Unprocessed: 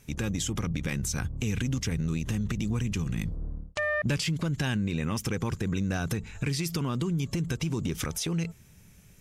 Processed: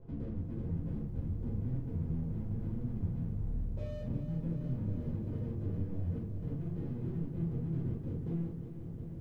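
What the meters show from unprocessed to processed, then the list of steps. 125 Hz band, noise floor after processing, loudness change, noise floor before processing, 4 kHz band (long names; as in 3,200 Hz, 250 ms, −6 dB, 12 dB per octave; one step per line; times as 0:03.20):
−5.0 dB, −43 dBFS, −7.5 dB, −55 dBFS, below −30 dB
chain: high-pass filter 60 Hz 12 dB per octave
mains-hum notches 60/120/180/240/300/360 Hz
upward compression, threshold −42 dBFS
Butterworth low-pass 510 Hz 36 dB per octave
downward compressor 16 to 1, threshold −39 dBFS, peak gain reduction 16 dB
dead-zone distortion −55.5 dBFS
low-shelf EQ 120 Hz +7 dB
rectangular room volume 310 cubic metres, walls furnished, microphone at 4.9 metres
feedback echo at a low word length 358 ms, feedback 80%, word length 11 bits, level −10 dB
level −7 dB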